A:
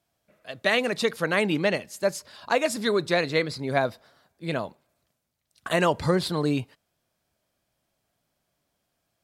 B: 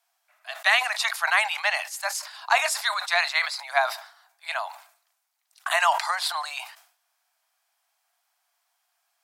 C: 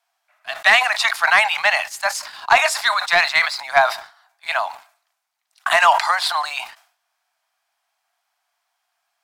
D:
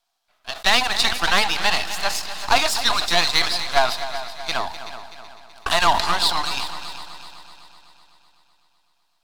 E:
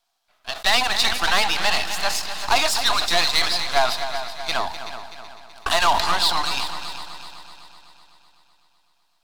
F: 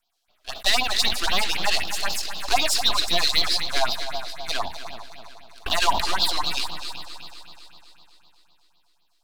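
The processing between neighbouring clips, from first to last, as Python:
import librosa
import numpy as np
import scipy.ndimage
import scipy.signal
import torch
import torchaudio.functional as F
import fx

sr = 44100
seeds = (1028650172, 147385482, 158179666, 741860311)

y1 = scipy.signal.sosfilt(scipy.signal.butter(12, 710.0, 'highpass', fs=sr, output='sos'), x)
y1 = fx.peak_eq(y1, sr, hz=3400.0, db=-2.5, octaves=0.77)
y1 = fx.sustainer(y1, sr, db_per_s=110.0)
y1 = y1 * 10.0 ** (5.5 / 20.0)
y2 = fx.high_shelf(y1, sr, hz=6500.0, db=-9.5)
y2 = fx.leveller(y2, sr, passes=1)
y2 = y2 * 10.0 ** (5.0 / 20.0)
y3 = np.where(y2 < 0.0, 10.0 ** (-12.0 / 20.0) * y2, y2)
y3 = fx.graphic_eq(y3, sr, hz=(125, 2000, 4000), db=(-8, -7, 7))
y3 = fx.echo_heads(y3, sr, ms=126, heads='second and third', feedback_pct=53, wet_db=-13)
y3 = y3 * 10.0 ** (1.0 / 20.0)
y4 = 10.0 ** (-10.0 / 20.0) * np.tanh(y3 / 10.0 ** (-10.0 / 20.0))
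y4 = y4 * 10.0 ** (1.5 / 20.0)
y5 = fx.phaser_stages(y4, sr, stages=4, low_hz=130.0, high_hz=1900.0, hz=3.9, feedback_pct=25)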